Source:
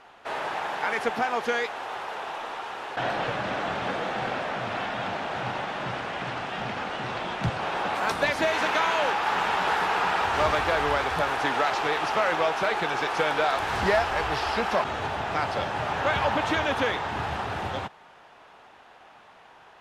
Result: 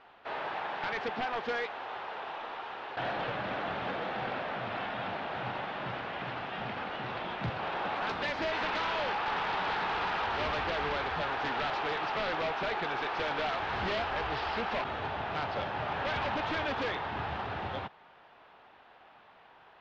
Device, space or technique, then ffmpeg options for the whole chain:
synthesiser wavefolder: -af "aeval=exprs='0.0891*(abs(mod(val(0)/0.0891+3,4)-2)-1)':c=same,lowpass=f=4300:w=0.5412,lowpass=f=4300:w=1.3066,volume=0.531"

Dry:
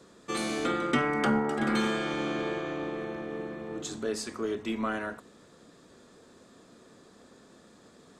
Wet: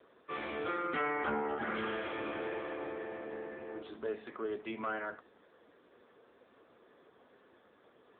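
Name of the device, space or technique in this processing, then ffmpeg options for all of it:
telephone: -af "highpass=380,lowpass=3300,asoftclip=type=tanh:threshold=0.0708,volume=0.841" -ar 8000 -c:a libopencore_amrnb -b:a 6700

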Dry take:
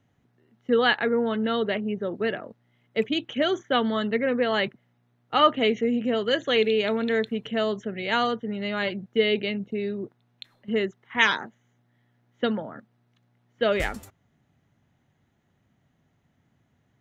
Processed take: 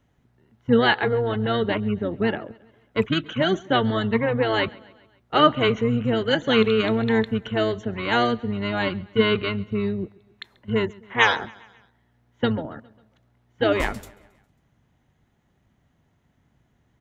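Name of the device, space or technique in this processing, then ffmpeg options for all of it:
octave pedal: -filter_complex "[0:a]asplit=3[s0][s1][s2];[s0]afade=t=out:st=2.99:d=0.02[s3];[s1]highpass=f=65:w=0.5412,highpass=f=65:w=1.3066,afade=t=in:st=2.99:d=0.02,afade=t=out:st=4.14:d=0.02[s4];[s2]afade=t=in:st=4.14:d=0.02[s5];[s3][s4][s5]amix=inputs=3:normalize=0,aecho=1:1:136|272|408|544:0.0631|0.0347|0.0191|0.0105,asplit=2[s6][s7];[s7]asetrate=22050,aresample=44100,atempo=2,volume=0.631[s8];[s6][s8]amix=inputs=2:normalize=0,volume=1.19"

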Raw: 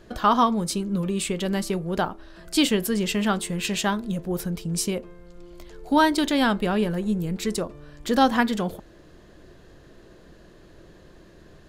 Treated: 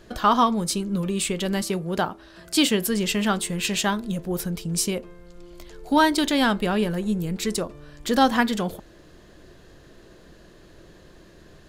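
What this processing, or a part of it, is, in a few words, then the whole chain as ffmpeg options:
exciter from parts: -filter_complex "[0:a]asplit=2[s0][s1];[s1]highpass=f=2800:p=1,asoftclip=type=tanh:threshold=0.0596,volume=0.631[s2];[s0][s2]amix=inputs=2:normalize=0,asettb=1/sr,asplit=3[s3][s4][s5];[s3]atrim=end=1.614[s6];[s4]atrim=start=1.61:end=2.86,asetpts=PTS-STARTPTS,afade=t=in:d=0.004:c=qsin,afade=t=out:st=1.246:d=0.004:c=qsin,highpass=56[s7];[s5]atrim=start=2.856[s8];[s6][s7]acrossfade=d=0.004:c1=hsin:c2=qsin[s9];[s9][s8]acrossfade=d=0.004:c1=qsin:c2=hsin"

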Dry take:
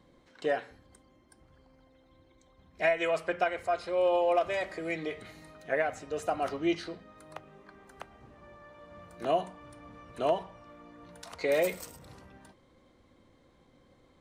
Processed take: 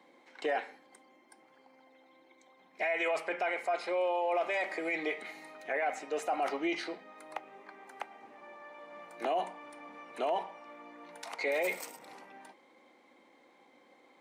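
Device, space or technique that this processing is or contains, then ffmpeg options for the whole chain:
laptop speaker: -af "highpass=f=250:w=0.5412,highpass=f=250:w=1.3066,equalizer=f=830:t=o:w=0.36:g=10,equalizer=f=2200:t=o:w=0.48:g=9.5,alimiter=limit=0.0668:level=0:latency=1:release=14"

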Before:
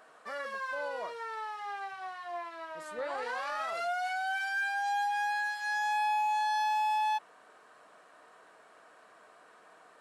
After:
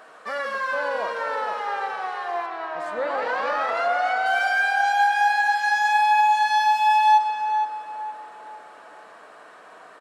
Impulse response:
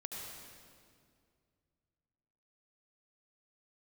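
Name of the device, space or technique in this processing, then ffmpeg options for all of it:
filtered reverb send: -filter_complex "[0:a]asplit=2[s0][s1];[s1]highpass=180,lowpass=6700[s2];[1:a]atrim=start_sample=2205[s3];[s2][s3]afir=irnorm=-1:irlink=0,volume=0.794[s4];[s0][s4]amix=inputs=2:normalize=0,asettb=1/sr,asplit=3[s5][s6][s7];[s5]atrim=end=2.464[s8];[s6]atrim=start=2.46:end=4.26,asetpts=PTS-STARTPTS,afade=t=in:d=0.004:c=qsin,afade=t=out:st=1.796:d=0.004:c=qsin,aemphasis=mode=reproduction:type=50kf[s9];[s7]atrim=start=4.256[s10];[s8][s9]acrossfade=d=0.004:c1=hsin:c2=qsin[s11];[s11][s10]acrossfade=d=0.004:c1=qsin:c2=hsin,asplit=2[s12][s13];[s13]adelay=467,lowpass=f=1700:p=1,volume=0.501,asplit=2[s14][s15];[s15]adelay=467,lowpass=f=1700:p=1,volume=0.39,asplit=2[s16][s17];[s17]adelay=467,lowpass=f=1700:p=1,volume=0.39,asplit=2[s18][s19];[s19]adelay=467,lowpass=f=1700:p=1,volume=0.39,asplit=2[s20][s21];[s21]adelay=467,lowpass=f=1700:p=1,volume=0.39[s22];[s12][s14][s16][s18][s20][s22]amix=inputs=6:normalize=0,volume=2.24"

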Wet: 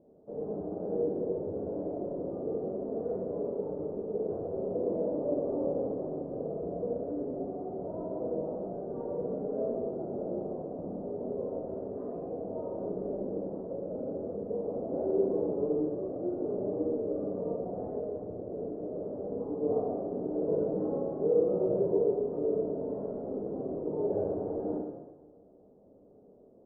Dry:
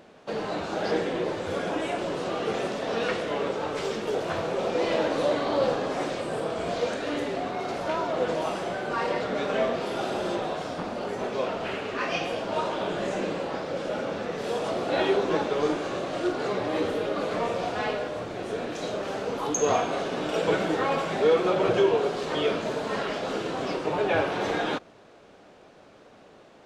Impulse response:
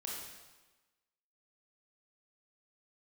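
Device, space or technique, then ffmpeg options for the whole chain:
next room: -filter_complex "[0:a]lowpass=f=560:w=0.5412,lowpass=f=560:w=1.3066[s0];[1:a]atrim=start_sample=2205[s1];[s0][s1]afir=irnorm=-1:irlink=0,volume=0.708"

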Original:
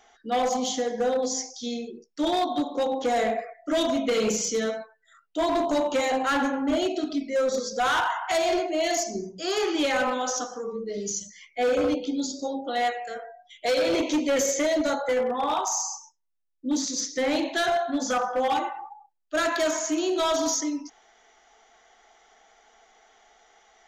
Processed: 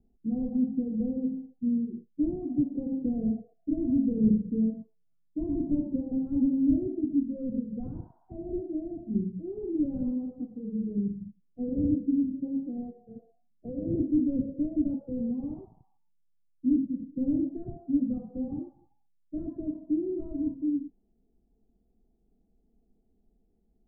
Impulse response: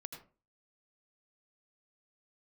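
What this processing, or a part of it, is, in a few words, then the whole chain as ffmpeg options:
the neighbour's flat through the wall: -af "lowpass=f=240:w=0.5412,lowpass=f=240:w=1.3066,equalizer=f=120:t=o:w=0.92:g=5,volume=2.66"

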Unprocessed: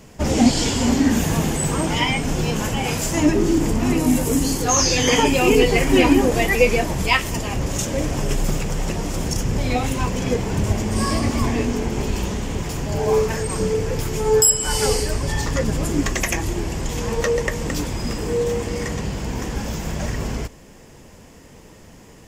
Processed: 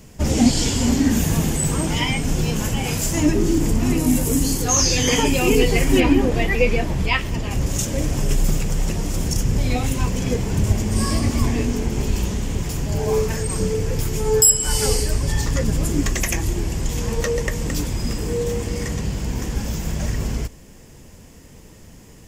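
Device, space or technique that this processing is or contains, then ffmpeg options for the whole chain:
smiley-face EQ: -filter_complex "[0:a]asettb=1/sr,asplit=3[s0][s1][s2];[s0]atrim=end=6.004[s3];[s1]atrim=start=6:end=7.51,asetpts=PTS-STARTPTS,afade=t=in:d=0.004:c=qsin,afade=t=out:st=1.506:d=0.004:c=qsin,acrossover=split=4500[s4][s5];[s5]acompressor=threshold=0.00398:ratio=4:attack=1:release=60[s6];[s4][s6]amix=inputs=2:normalize=0[s7];[s2]atrim=start=7.506[s8];[s3][s7]acrossfade=d=0.004:c1=hsin:c2=qsin[s9];[s9][s8]acrossfade=d=0.004:c1=qsin:c2=hsin,lowshelf=f=170:g=6,equalizer=f=860:t=o:w=1.9:g=-3,highshelf=f=6800:g=6.5,volume=0.794"

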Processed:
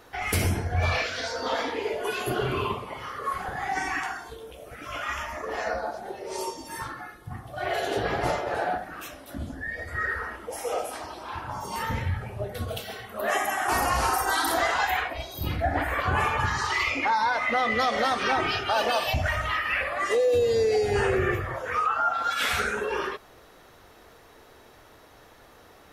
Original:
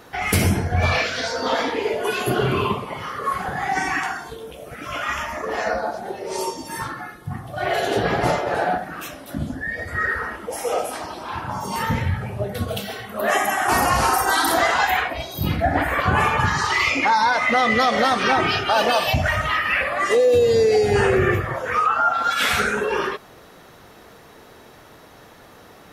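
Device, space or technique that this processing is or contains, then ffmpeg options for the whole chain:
low shelf boost with a cut just above: -filter_complex "[0:a]bandreject=f=50:t=h:w=6,bandreject=f=100:t=h:w=6,bandreject=f=150:t=h:w=6,bandreject=f=200:t=h:w=6,bandreject=f=250:t=h:w=6,asettb=1/sr,asplit=3[s0][s1][s2];[s0]atrim=end=16.834[s3];[s1]atrim=start=16.83:end=17.79,asetpts=PTS-STARTPTS,afade=t=in:d=0.004:c=qsin,afade=t=out:st=0.956:d=0.004:c=qsin,equalizer=f=6900:t=o:w=1.4:g=-5[s4];[s2]atrim=start=17.786[s5];[s3][s4]acrossfade=d=0.004:c1=hsin:c2=qsin[s6];[s6][s5]acrossfade=d=0.004:c1=qsin:c2=hsin,lowshelf=f=66:g=8,equalizer=f=170:t=o:w=0.99:g=-6,volume=0.501"

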